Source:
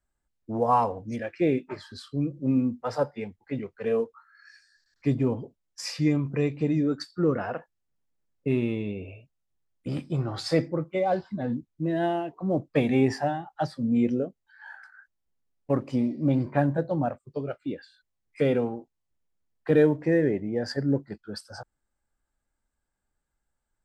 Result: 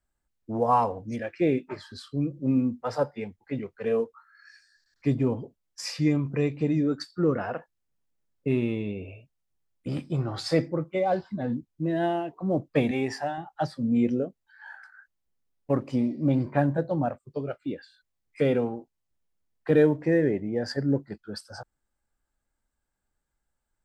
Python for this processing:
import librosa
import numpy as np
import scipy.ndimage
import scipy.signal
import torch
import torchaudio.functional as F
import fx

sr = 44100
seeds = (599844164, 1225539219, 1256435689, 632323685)

y = fx.low_shelf(x, sr, hz=440.0, db=-10.0, at=(12.91, 13.38))